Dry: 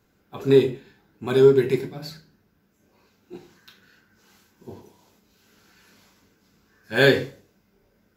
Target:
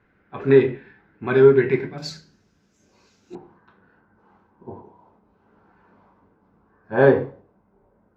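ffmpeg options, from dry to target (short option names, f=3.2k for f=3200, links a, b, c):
-af "asetnsamples=n=441:p=0,asendcmd='1.98 lowpass f 6500;3.35 lowpass f 960',lowpass=f=1.9k:t=q:w=2.3,volume=1.5dB"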